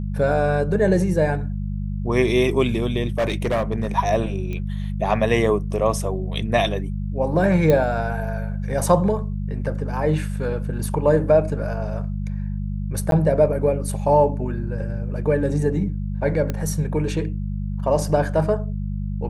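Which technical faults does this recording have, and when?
hum 50 Hz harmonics 4 -26 dBFS
3.18–3.87 s: clipped -16.5 dBFS
4.53 s: pop -19 dBFS
7.70 s: pop -8 dBFS
13.11–13.12 s: dropout 12 ms
16.50 s: pop -12 dBFS

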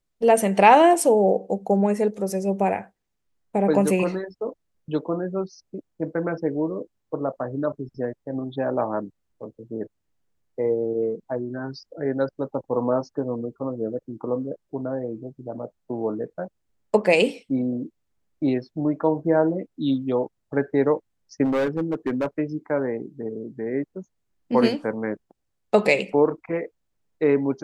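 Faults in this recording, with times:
21.44–22.26 s: clipped -19 dBFS

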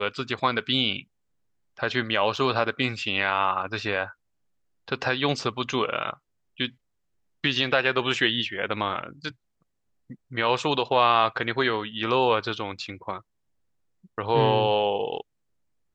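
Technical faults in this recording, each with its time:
2.36 s: dropout 4.6 ms

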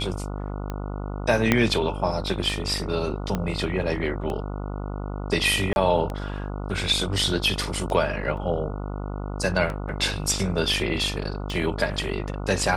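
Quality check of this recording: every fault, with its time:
buzz 50 Hz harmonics 29 -31 dBFS
tick 33 1/3 rpm -18 dBFS
1.52 s: pop -4 dBFS
3.35 s: pop -12 dBFS
5.73–5.76 s: dropout 31 ms
8.37 s: dropout 2.9 ms

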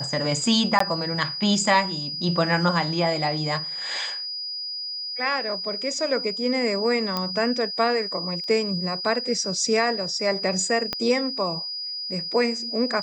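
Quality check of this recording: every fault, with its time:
whine 4.9 kHz -29 dBFS
0.79–0.80 s: dropout 14 ms
7.17 s: pop -11 dBFS
8.44 s: dropout 2.2 ms
10.93 s: pop -11 dBFS

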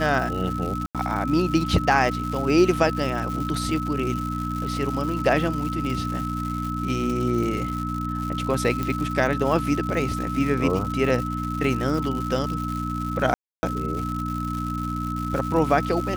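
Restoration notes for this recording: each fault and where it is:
crackle 230 per s -29 dBFS
hum 60 Hz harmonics 5 -29 dBFS
whine 1.3 kHz -30 dBFS
0.86–0.95 s: dropout 87 ms
8.83 s: pop -13 dBFS
13.34–13.63 s: dropout 290 ms

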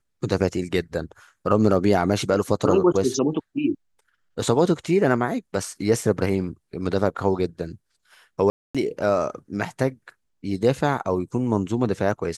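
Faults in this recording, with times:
8.50–8.75 s: dropout 246 ms

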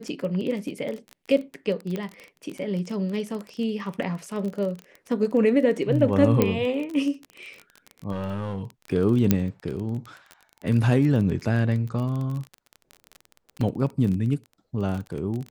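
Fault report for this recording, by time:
crackle 24 per s -29 dBFS
1.96 s: pop -18 dBFS
6.42 s: pop -7 dBFS
8.11–8.70 s: clipped -24.5 dBFS
9.31 s: pop -5 dBFS
13.61 s: dropout 3.5 ms

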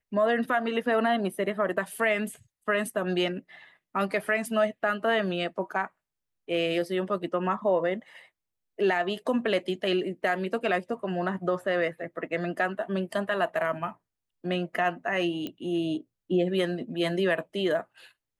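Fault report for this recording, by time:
15.47 s: pop -21 dBFS

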